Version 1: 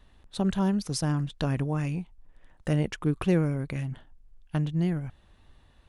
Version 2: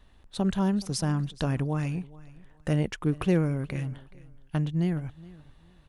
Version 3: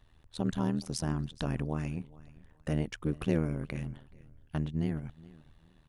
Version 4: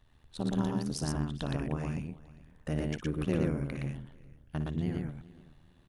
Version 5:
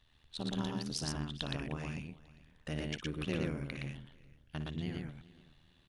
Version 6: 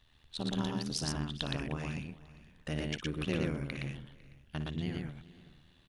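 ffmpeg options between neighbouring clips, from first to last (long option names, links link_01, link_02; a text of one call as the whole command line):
ffmpeg -i in.wav -af "aecho=1:1:423|846:0.0891|0.0205" out.wav
ffmpeg -i in.wav -af "tremolo=f=79:d=0.889,volume=-1.5dB" out.wav
ffmpeg -i in.wav -af "aecho=1:1:58.31|116.6:0.282|0.794,volume=-2dB" out.wav
ffmpeg -i in.wav -af "equalizer=frequency=3500:width_type=o:width=1.9:gain=12,volume=-6.5dB" out.wav
ffmpeg -i in.wav -af "aecho=1:1:502:0.0631,volume=2.5dB" out.wav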